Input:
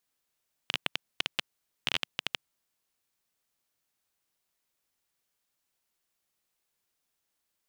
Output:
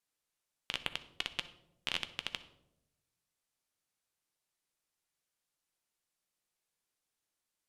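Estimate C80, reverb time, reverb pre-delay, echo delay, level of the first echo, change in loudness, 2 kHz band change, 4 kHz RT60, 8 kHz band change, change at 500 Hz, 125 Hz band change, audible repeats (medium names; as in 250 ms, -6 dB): 17.0 dB, 0.90 s, 6 ms, no echo, no echo, -5.0 dB, -5.0 dB, 0.50 s, -4.5 dB, -4.5 dB, -4.5 dB, no echo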